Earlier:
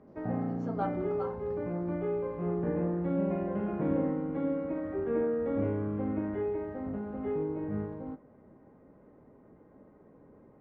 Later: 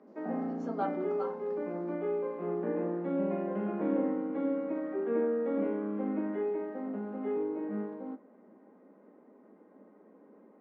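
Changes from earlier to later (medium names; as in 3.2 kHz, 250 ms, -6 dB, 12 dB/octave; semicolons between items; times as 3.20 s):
speech: remove distance through air 64 m; master: add steep high-pass 190 Hz 72 dB/octave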